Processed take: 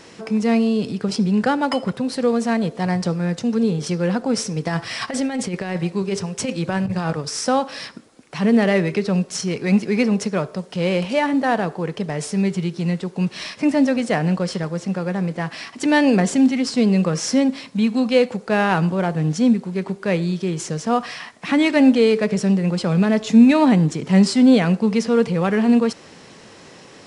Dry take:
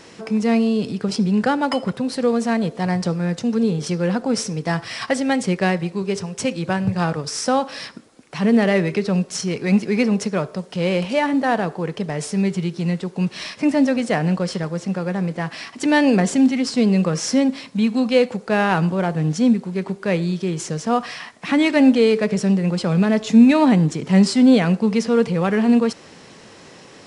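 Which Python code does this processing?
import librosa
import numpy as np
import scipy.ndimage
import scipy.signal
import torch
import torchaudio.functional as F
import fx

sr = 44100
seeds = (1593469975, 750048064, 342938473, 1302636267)

y = fx.over_compress(x, sr, threshold_db=-21.0, ratio=-0.5, at=(4.56, 7.11))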